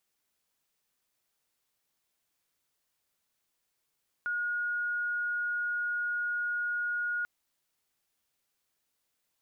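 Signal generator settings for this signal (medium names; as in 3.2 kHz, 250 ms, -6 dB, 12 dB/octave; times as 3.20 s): tone sine 1.44 kHz -29 dBFS 2.99 s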